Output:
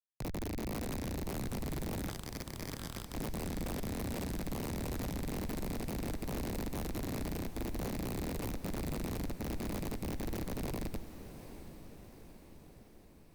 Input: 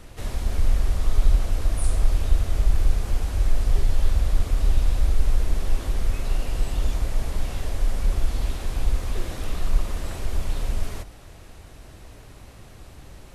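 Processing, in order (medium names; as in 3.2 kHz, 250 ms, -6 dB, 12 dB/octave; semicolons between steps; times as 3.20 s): Schmitt trigger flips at -21.5 dBFS; treble shelf 4.9 kHz -10.5 dB; reverb removal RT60 1.8 s; 2.09–3.15 s: frequency weighting A; in parallel at -11 dB: bit crusher 5-bit; on the sum: static phaser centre 2.8 kHz, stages 6; sine folder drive 3 dB, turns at -39.5 dBFS; on a send: echo that smears into a reverb 776 ms, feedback 59%, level -12 dB; on the sum: trim +5 dB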